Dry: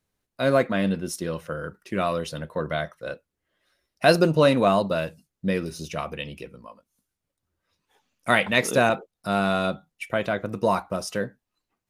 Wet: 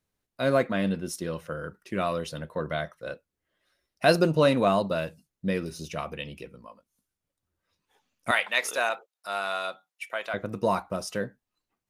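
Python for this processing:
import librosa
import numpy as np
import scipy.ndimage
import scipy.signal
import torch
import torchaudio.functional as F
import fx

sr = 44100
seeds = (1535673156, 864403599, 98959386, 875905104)

y = fx.highpass(x, sr, hz=780.0, slope=12, at=(8.31, 10.34))
y = F.gain(torch.from_numpy(y), -3.0).numpy()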